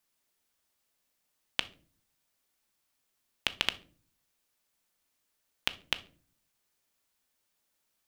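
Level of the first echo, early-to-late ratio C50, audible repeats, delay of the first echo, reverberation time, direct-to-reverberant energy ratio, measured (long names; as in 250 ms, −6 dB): no echo audible, 18.0 dB, no echo audible, no echo audible, 0.40 s, 11.0 dB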